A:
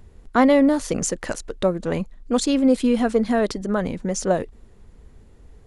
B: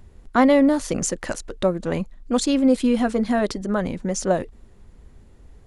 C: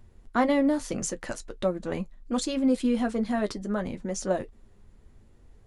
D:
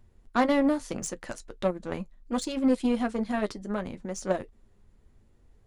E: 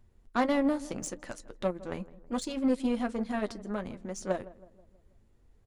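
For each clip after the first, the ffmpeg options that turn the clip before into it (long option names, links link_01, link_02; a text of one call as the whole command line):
ffmpeg -i in.wav -af "bandreject=frequency=450:width=12" out.wav
ffmpeg -i in.wav -af "flanger=delay=8.5:depth=1.2:regen=-48:speed=0.74:shape=triangular,volume=-2.5dB" out.wav
ffmpeg -i in.wav -af "aeval=exprs='0.266*(cos(1*acos(clip(val(0)/0.266,-1,1)))-cos(1*PI/2))+0.0168*(cos(7*acos(clip(val(0)/0.266,-1,1)))-cos(7*PI/2))':channel_layout=same" out.wav
ffmpeg -i in.wav -filter_complex "[0:a]asplit=2[link_01][link_02];[link_02]adelay=161,lowpass=frequency=1100:poles=1,volume=-17.5dB,asplit=2[link_03][link_04];[link_04]adelay=161,lowpass=frequency=1100:poles=1,volume=0.54,asplit=2[link_05][link_06];[link_06]adelay=161,lowpass=frequency=1100:poles=1,volume=0.54,asplit=2[link_07][link_08];[link_08]adelay=161,lowpass=frequency=1100:poles=1,volume=0.54,asplit=2[link_09][link_10];[link_10]adelay=161,lowpass=frequency=1100:poles=1,volume=0.54[link_11];[link_01][link_03][link_05][link_07][link_09][link_11]amix=inputs=6:normalize=0,volume=-3.5dB" out.wav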